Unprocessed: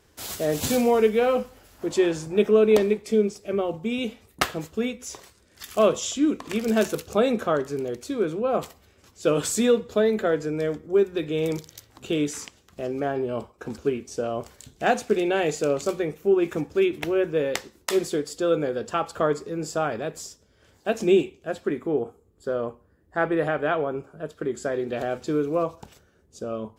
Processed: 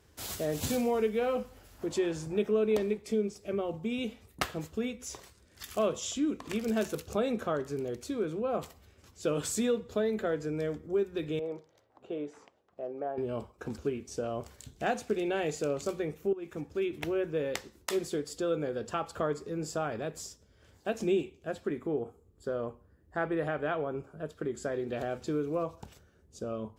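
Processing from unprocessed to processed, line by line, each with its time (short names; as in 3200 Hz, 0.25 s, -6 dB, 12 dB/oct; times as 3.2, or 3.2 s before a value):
11.39–13.18 band-pass 650 Hz, Q 1.6
16.33–17.09 fade in, from -14 dB
whole clip: HPF 48 Hz; low shelf 97 Hz +10 dB; compressor 1.5:1, threshold -30 dBFS; gain -4.5 dB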